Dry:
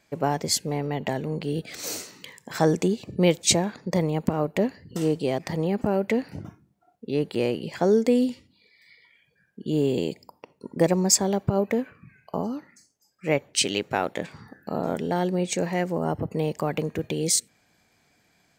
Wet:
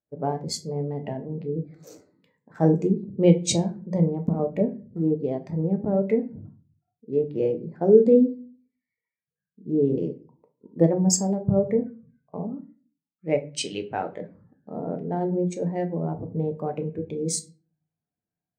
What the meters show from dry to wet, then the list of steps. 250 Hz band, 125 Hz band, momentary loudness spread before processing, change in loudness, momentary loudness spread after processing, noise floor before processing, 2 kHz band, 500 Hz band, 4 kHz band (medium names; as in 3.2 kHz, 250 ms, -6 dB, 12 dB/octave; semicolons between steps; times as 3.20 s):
+1.5 dB, +2.0 dB, 15 LU, +0.5 dB, 15 LU, -66 dBFS, -10.5 dB, +1.5 dB, -7.0 dB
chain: local Wiener filter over 15 samples; simulated room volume 64 m³, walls mixed, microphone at 0.42 m; spectral contrast expander 1.5:1